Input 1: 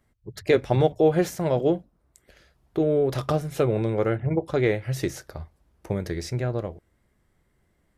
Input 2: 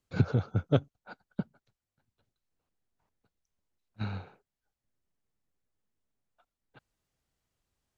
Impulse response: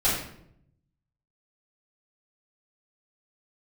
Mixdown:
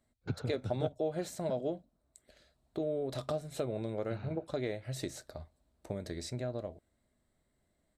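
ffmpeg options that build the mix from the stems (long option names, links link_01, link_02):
-filter_complex "[0:a]equalizer=frequency=250:width_type=o:width=0.33:gain=8,equalizer=frequency=630:width_type=o:width=0.33:gain=10,equalizer=frequency=4000:width_type=o:width=0.33:gain=11,equalizer=frequency=8000:width_type=o:width=0.33:gain=11,volume=-11dB,asplit=2[link_01][link_02];[1:a]adelay=100,volume=-6dB[link_03];[link_02]apad=whole_len=356276[link_04];[link_03][link_04]sidechaingate=range=-33dB:threshold=-52dB:ratio=16:detection=peak[link_05];[link_01][link_05]amix=inputs=2:normalize=0,acompressor=threshold=-35dB:ratio=2"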